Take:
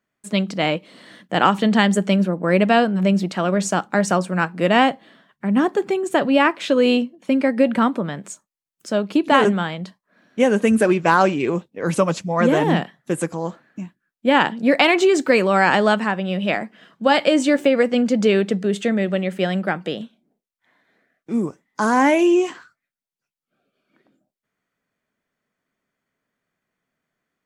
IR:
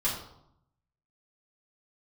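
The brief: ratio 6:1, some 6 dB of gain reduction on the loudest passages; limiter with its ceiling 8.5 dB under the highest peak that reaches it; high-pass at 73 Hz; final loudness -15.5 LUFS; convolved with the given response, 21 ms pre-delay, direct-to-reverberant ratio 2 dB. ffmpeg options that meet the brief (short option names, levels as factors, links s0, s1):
-filter_complex "[0:a]highpass=73,acompressor=threshold=0.141:ratio=6,alimiter=limit=0.2:level=0:latency=1,asplit=2[s0][s1];[1:a]atrim=start_sample=2205,adelay=21[s2];[s1][s2]afir=irnorm=-1:irlink=0,volume=0.316[s3];[s0][s3]amix=inputs=2:normalize=0,volume=2.11"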